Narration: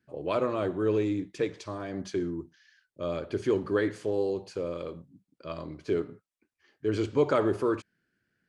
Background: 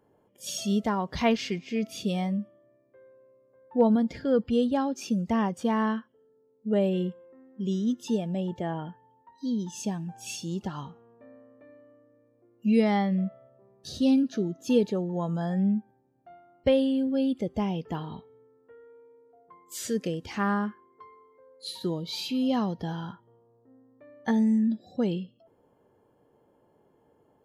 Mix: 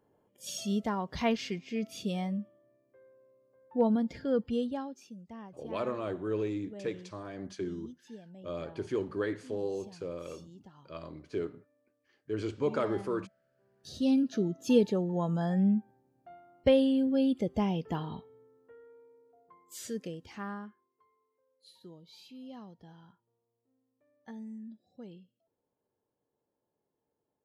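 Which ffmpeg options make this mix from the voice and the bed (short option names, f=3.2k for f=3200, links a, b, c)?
-filter_complex "[0:a]adelay=5450,volume=-6dB[a];[1:a]volume=14.5dB,afade=t=out:st=4.41:d=0.68:silence=0.16788,afade=t=in:st=13.44:d=1.03:silence=0.105925,afade=t=out:st=18.2:d=2.73:silence=0.105925[b];[a][b]amix=inputs=2:normalize=0"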